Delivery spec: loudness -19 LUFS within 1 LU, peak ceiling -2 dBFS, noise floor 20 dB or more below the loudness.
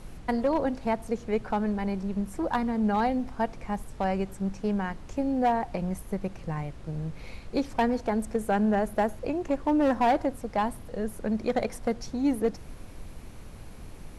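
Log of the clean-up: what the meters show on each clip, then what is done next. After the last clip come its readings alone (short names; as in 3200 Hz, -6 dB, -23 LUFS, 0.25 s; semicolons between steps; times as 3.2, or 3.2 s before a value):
clipped 0.5%; flat tops at -17.5 dBFS; noise floor -44 dBFS; noise floor target -49 dBFS; loudness -29.0 LUFS; peak -17.5 dBFS; loudness target -19.0 LUFS
-> clip repair -17.5 dBFS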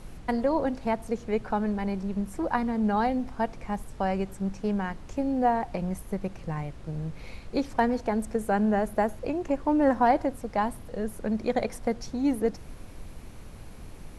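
clipped 0.0%; noise floor -44 dBFS; noise floor target -49 dBFS
-> noise print and reduce 6 dB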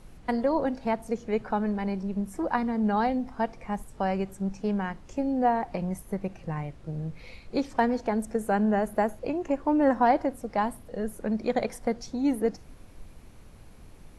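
noise floor -50 dBFS; loudness -28.5 LUFS; peak -10.0 dBFS; loudness target -19.0 LUFS
-> gain +9.5 dB; limiter -2 dBFS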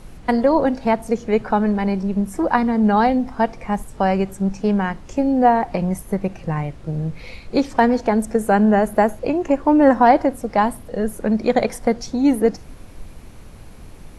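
loudness -19.0 LUFS; peak -2.0 dBFS; noise floor -40 dBFS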